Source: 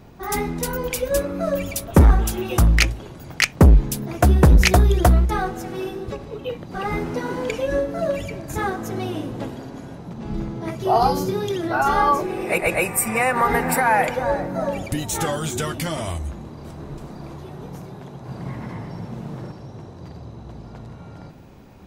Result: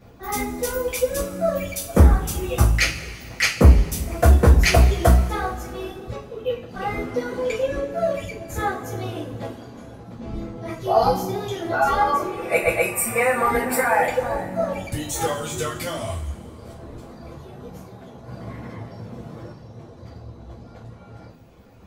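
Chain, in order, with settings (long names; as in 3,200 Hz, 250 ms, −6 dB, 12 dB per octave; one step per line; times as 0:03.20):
reverb reduction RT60 0.93 s
coupled-rooms reverb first 0.32 s, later 2.2 s, from −18 dB, DRR −9 dB
level −9.5 dB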